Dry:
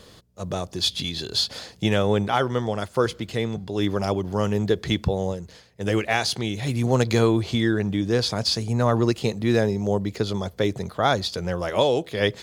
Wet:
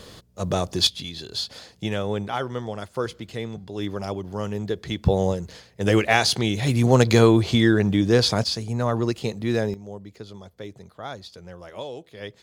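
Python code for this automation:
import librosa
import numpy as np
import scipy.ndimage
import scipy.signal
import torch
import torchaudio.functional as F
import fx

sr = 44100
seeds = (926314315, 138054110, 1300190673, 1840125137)

y = fx.gain(x, sr, db=fx.steps((0.0, 4.5), (0.87, -5.5), (5.05, 4.0), (8.44, -3.0), (9.74, -14.5)))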